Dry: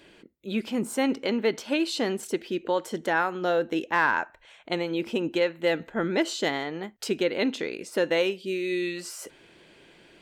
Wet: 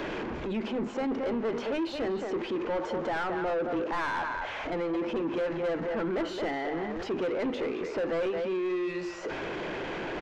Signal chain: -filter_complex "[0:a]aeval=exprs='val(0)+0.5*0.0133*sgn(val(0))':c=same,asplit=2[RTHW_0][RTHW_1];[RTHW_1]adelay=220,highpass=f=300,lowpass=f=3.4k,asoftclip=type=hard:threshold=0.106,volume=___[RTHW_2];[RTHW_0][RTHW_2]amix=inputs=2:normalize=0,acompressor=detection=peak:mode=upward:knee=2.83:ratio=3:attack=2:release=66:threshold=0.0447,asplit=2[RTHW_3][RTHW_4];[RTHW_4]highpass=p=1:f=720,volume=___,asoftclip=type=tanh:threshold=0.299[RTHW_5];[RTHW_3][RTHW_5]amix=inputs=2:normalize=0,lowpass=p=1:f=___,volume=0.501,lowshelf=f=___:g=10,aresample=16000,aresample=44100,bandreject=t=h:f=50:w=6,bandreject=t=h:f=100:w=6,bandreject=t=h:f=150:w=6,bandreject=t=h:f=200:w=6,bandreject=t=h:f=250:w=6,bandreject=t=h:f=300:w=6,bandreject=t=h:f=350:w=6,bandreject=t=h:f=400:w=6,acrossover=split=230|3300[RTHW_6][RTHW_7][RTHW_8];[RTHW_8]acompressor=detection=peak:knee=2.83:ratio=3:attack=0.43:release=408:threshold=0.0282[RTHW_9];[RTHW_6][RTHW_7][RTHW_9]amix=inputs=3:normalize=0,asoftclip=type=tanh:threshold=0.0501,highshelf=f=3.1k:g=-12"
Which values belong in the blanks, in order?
0.355, 5.01, 1k, 67